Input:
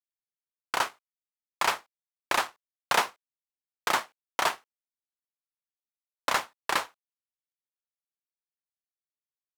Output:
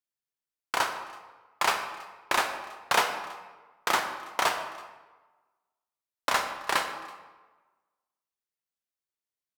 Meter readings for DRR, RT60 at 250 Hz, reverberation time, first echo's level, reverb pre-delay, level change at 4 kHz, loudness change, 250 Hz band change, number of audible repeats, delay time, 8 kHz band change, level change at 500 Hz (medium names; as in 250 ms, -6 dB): 5.0 dB, 1.2 s, 1.3 s, -23.5 dB, 10 ms, +1.0 dB, +0.5 dB, +1.0 dB, 1, 328 ms, +1.0 dB, +1.5 dB